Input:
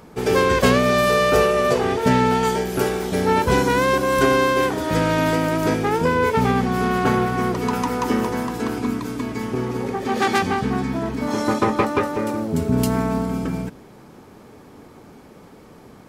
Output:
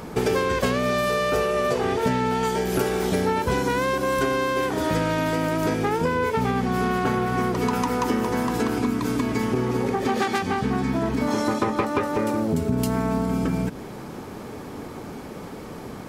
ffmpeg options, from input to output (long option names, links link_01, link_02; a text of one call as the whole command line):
ffmpeg -i in.wav -af "acompressor=threshold=-29dB:ratio=6,volume=8.5dB" out.wav